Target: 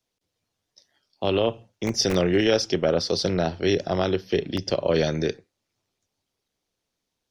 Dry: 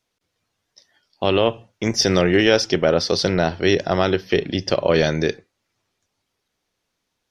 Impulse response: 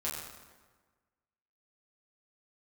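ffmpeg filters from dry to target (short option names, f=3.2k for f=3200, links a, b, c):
-filter_complex "[0:a]acrossover=split=180|1100|2200[a][b][c][d];[a]aeval=exprs='(mod(10*val(0)+1,2)-1)/10':c=same[e];[c]aeval=exprs='val(0)*sin(2*PI*140*n/s)':c=same[f];[e][b][f][d]amix=inputs=4:normalize=0,volume=-4dB"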